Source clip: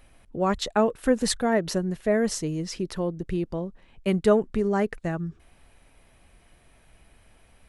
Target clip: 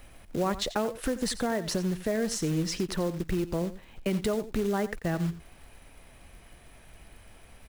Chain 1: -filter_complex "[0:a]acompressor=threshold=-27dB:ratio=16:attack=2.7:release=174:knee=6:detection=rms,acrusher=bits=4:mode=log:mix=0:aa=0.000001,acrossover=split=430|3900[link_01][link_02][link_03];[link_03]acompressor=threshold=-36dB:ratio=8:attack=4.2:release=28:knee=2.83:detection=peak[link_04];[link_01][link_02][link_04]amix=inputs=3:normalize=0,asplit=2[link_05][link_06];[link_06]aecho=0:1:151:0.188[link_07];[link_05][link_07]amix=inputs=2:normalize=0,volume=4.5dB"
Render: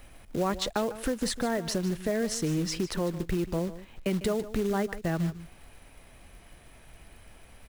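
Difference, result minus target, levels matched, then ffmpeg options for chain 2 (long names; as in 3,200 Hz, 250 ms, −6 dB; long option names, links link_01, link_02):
echo 62 ms late
-filter_complex "[0:a]acompressor=threshold=-27dB:ratio=16:attack=2.7:release=174:knee=6:detection=rms,acrusher=bits=4:mode=log:mix=0:aa=0.000001,acrossover=split=430|3900[link_01][link_02][link_03];[link_03]acompressor=threshold=-36dB:ratio=8:attack=4.2:release=28:knee=2.83:detection=peak[link_04];[link_01][link_02][link_04]amix=inputs=3:normalize=0,asplit=2[link_05][link_06];[link_06]aecho=0:1:89:0.188[link_07];[link_05][link_07]amix=inputs=2:normalize=0,volume=4.5dB"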